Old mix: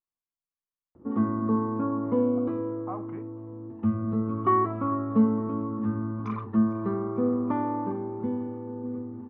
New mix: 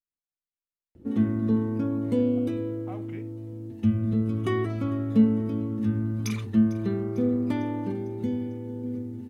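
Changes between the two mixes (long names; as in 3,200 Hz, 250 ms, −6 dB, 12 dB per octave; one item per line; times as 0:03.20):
background: add low-shelf EQ 110 Hz +11 dB
master: remove low-pass with resonance 1,100 Hz, resonance Q 5.7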